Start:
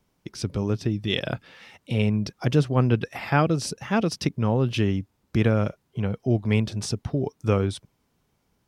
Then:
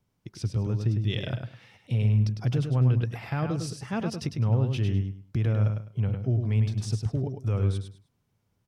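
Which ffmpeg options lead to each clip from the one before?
-af "equalizer=f=110:t=o:w=0.88:g=12,alimiter=limit=-9.5dB:level=0:latency=1:release=24,aecho=1:1:103|206|309:0.501|0.115|0.0265,volume=-8.5dB"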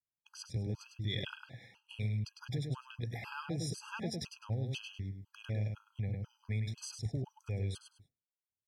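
-filter_complex "[0:a]agate=range=-33dB:threshold=-50dB:ratio=3:detection=peak,acrossover=split=1700[a][b];[a]acompressor=threshold=-33dB:ratio=6[c];[c][b]amix=inputs=2:normalize=0,afftfilt=real='re*gt(sin(2*PI*2*pts/sr)*(1-2*mod(floor(b*sr/1024/830),2)),0)':imag='im*gt(sin(2*PI*2*pts/sr)*(1-2*mod(floor(b*sr/1024/830),2)),0)':win_size=1024:overlap=0.75"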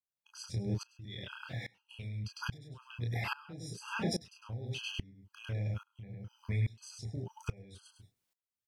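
-filter_complex "[0:a]acompressor=threshold=-44dB:ratio=2.5,asplit=2[a][b];[b]aecho=0:1:25|35:0.473|0.422[c];[a][c]amix=inputs=2:normalize=0,aeval=exprs='val(0)*pow(10,-23*if(lt(mod(-1.2*n/s,1),2*abs(-1.2)/1000),1-mod(-1.2*n/s,1)/(2*abs(-1.2)/1000),(mod(-1.2*n/s,1)-2*abs(-1.2)/1000)/(1-2*abs(-1.2)/1000))/20)':c=same,volume=12.5dB"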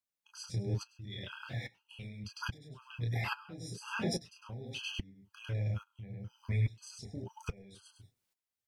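-af "flanger=delay=2.9:depth=7.7:regen=-39:speed=0.41:shape=triangular,volume=4dB"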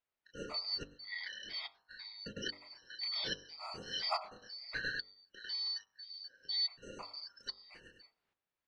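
-af "afftfilt=real='real(if(lt(b,272),68*(eq(floor(b/68),0)*3+eq(floor(b/68),1)*2+eq(floor(b/68),2)*1+eq(floor(b/68),3)*0)+mod(b,68),b),0)':imag='imag(if(lt(b,272),68*(eq(floor(b/68),0)*3+eq(floor(b/68),1)*2+eq(floor(b/68),2)*1+eq(floor(b/68),3)*0)+mod(b,68),b),0)':win_size=2048:overlap=0.75,lowpass=2.4k,bandreject=f=48.79:t=h:w=4,bandreject=f=97.58:t=h:w=4,bandreject=f=146.37:t=h:w=4,bandreject=f=195.16:t=h:w=4,bandreject=f=243.95:t=h:w=4,bandreject=f=292.74:t=h:w=4,bandreject=f=341.53:t=h:w=4,bandreject=f=390.32:t=h:w=4,bandreject=f=439.11:t=h:w=4,bandreject=f=487.9:t=h:w=4,bandreject=f=536.69:t=h:w=4,bandreject=f=585.48:t=h:w=4,bandreject=f=634.27:t=h:w=4,bandreject=f=683.06:t=h:w=4,bandreject=f=731.85:t=h:w=4,bandreject=f=780.64:t=h:w=4,bandreject=f=829.43:t=h:w=4,bandreject=f=878.22:t=h:w=4,bandreject=f=927.01:t=h:w=4,bandreject=f=975.8:t=h:w=4,bandreject=f=1.02459k:t=h:w=4,bandreject=f=1.07338k:t=h:w=4,bandreject=f=1.12217k:t=h:w=4,bandreject=f=1.17096k:t=h:w=4,bandreject=f=1.21975k:t=h:w=4,bandreject=f=1.26854k:t=h:w=4,bandreject=f=1.31733k:t=h:w=4,bandreject=f=1.36612k:t=h:w=4,volume=6.5dB"

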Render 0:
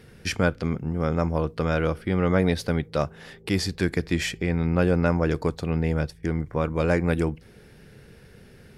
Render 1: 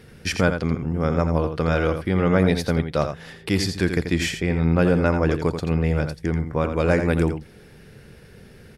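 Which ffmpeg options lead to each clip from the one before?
-af "aecho=1:1:85:0.398,volume=2.5dB"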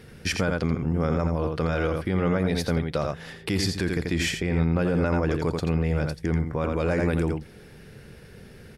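-af "alimiter=limit=-15dB:level=0:latency=1:release=29"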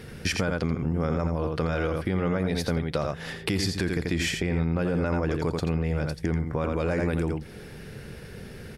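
-af "acompressor=threshold=-31dB:ratio=2.5,volume=5dB"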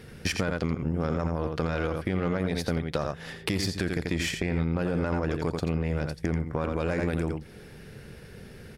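-af "aeval=exprs='0.316*(cos(1*acos(clip(val(0)/0.316,-1,1)))-cos(1*PI/2))+0.0178*(cos(7*acos(clip(val(0)/0.316,-1,1)))-cos(7*PI/2))':c=same"

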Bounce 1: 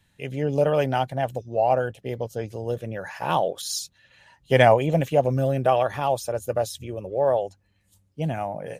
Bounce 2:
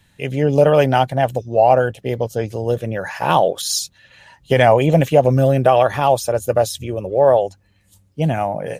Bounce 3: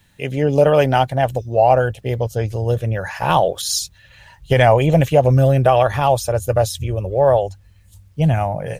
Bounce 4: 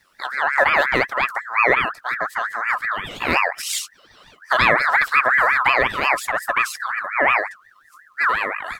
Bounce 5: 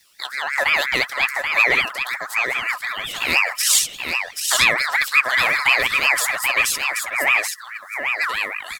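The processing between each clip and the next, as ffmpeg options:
-af "alimiter=level_in=9.5dB:limit=-1dB:release=50:level=0:latency=1,volume=-1dB"
-af "asubboost=boost=8:cutoff=92,acrusher=bits=10:mix=0:aa=0.000001"
-af "aeval=exprs='val(0)*sin(2*PI*1500*n/s+1500*0.25/5.6*sin(2*PI*5.6*n/s))':c=same,volume=-1dB"
-filter_complex "[0:a]aexciter=amount=5.2:drive=4.2:freq=2.2k,asplit=2[a][b];[b]aecho=0:1:781:0.531[c];[a][c]amix=inputs=2:normalize=0,volume=-6.5dB"

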